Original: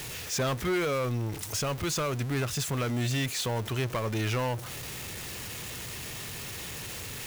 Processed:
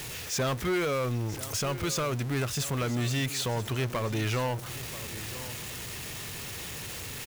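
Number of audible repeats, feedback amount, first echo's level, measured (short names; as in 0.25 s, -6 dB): 1, no steady repeat, -15.0 dB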